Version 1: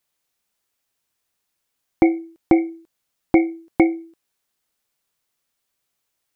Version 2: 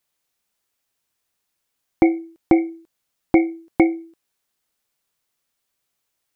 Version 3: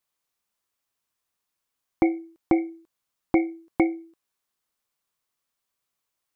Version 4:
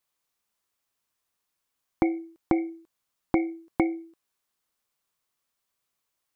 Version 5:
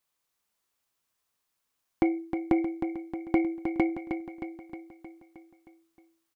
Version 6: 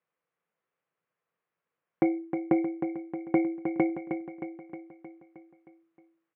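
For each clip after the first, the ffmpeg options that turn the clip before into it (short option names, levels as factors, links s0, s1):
-af anull
-af "equalizer=f=1100:t=o:w=0.43:g=5.5,volume=0.501"
-af "acompressor=threshold=0.1:ratio=6,volume=1.12"
-filter_complex "[0:a]asoftclip=type=tanh:threshold=0.282,asplit=2[s0][s1];[s1]aecho=0:1:312|624|936|1248|1560|1872|2184:0.422|0.245|0.142|0.0823|0.0477|0.0277|0.0161[s2];[s0][s2]amix=inputs=2:normalize=0"
-af "highpass=150,equalizer=f=160:t=q:w=4:g=10,equalizer=f=250:t=q:w=4:g=-5,equalizer=f=490:t=q:w=4:g=8,equalizer=f=910:t=q:w=4:g=-3,lowpass=f=2300:w=0.5412,lowpass=f=2300:w=1.3066"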